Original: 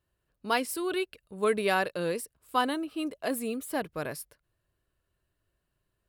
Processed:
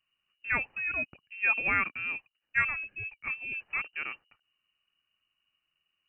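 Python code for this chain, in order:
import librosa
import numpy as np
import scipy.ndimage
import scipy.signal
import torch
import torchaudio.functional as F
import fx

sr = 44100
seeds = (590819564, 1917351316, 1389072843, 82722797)

y = fx.freq_invert(x, sr, carrier_hz=2900)
y = fx.band_widen(y, sr, depth_pct=70, at=(1.41, 3.52))
y = y * 10.0 ** (-2.0 / 20.0)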